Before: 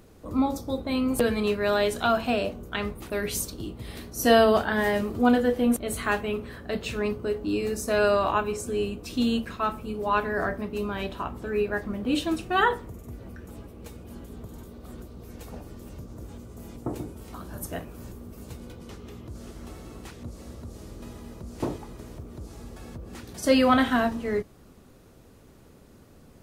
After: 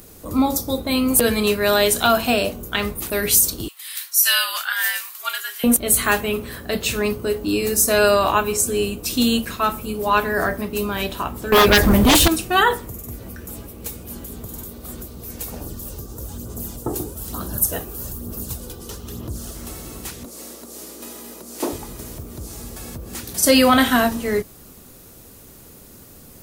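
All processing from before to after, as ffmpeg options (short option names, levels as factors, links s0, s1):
-filter_complex "[0:a]asettb=1/sr,asplit=3[s0][s1][s2];[s0]atrim=end=3.684[s3];[s1]atrim=start=3.68:end=5.64,asetpts=PTS-STARTPTS,afade=t=in:d=0.004:c=qsin,afade=t=out:st=1.956:d=0.004:c=qsin,highpass=f=1400:w=0.5412,highpass=f=1400:w=1.3066,afreqshift=-79[s4];[s2]atrim=start=5.636[s5];[s3][s4]acrossfade=d=0.004:c1=hsin:c2=qsin[s6];[s6][s5]acrossfade=d=0.004:c1=qsin:c2=hsin,asettb=1/sr,asplit=3[s7][s8][s9];[s7]atrim=end=11.524[s10];[s8]atrim=start=11.52:end=12.28,asetpts=PTS-STARTPTS,afade=t=in:d=0.004:c=qsin,afade=t=out:st=0.756:d=0.004:c=qsin,asubboost=boost=11:cutoff=120,aeval=exprs='0.178*sin(PI/2*3.55*val(0)/0.178)':c=same[s11];[s9]atrim=start=12.276[s12];[s10][s11]acrossfade=d=0.004:c1=hsin:c2=qsin[s13];[s13][s12]acrossfade=d=0.004:c1=qsin:c2=hsin,asettb=1/sr,asplit=3[s14][s15][s16];[s14]atrim=end=15.614[s17];[s15]atrim=start=15.61:end=19.55,asetpts=PTS-STARTPTS,afade=t=in:d=0.004:c=qsin,afade=t=out:st=3.936:d=0.004:c=qsin,equalizer=f=2200:w=3.7:g=-10.5,aphaser=in_gain=1:out_gain=1:delay=2.6:decay=0.41:speed=1.1:type=sinusoidal[s18];[s16]atrim=start=19.546[s19];[s17][s18]acrossfade=d=0.004:c1=hsin:c2=qsin[s20];[s20][s19]acrossfade=d=0.004:c1=qsin:c2=hsin,asettb=1/sr,asplit=3[s21][s22][s23];[s21]atrim=end=20.254[s24];[s22]atrim=start=20.25:end=21.73,asetpts=PTS-STARTPTS,afade=t=in:d=0.004:c=qsin,afade=t=out:st=1.476:d=0.004:c=qsin,highpass=f=250:w=0.5412,highpass=f=250:w=1.3066,aeval=exprs='val(0)+0.001*(sin(2*PI*60*n/s)+sin(2*PI*2*60*n/s)/2+sin(2*PI*3*60*n/s)/3+sin(2*PI*4*60*n/s)/4+sin(2*PI*5*60*n/s)/5)':c=same[s25];[s23]atrim=start=21.726[s26];[s24][s25]acrossfade=d=0.004:c1=hsin:c2=qsin[s27];[s27][s26]acrossfade=d=0.004:c1=qsin:c2=hsin,aemphasis=mode=production:type=75fm,alimiter=level_in=2.82:limit=0.891:release=50:level=0:latency=1,volume=0.75"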